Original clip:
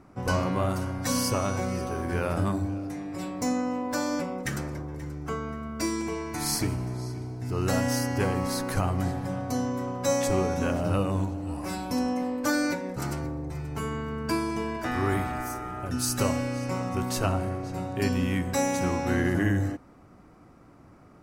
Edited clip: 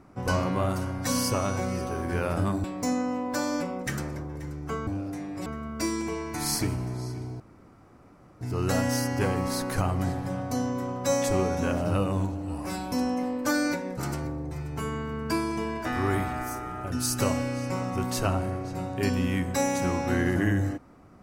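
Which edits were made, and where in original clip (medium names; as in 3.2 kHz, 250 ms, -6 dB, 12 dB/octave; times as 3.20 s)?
2.64–3.23 s: move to 5.46 s
7.40 s: insert room tone 1.01 s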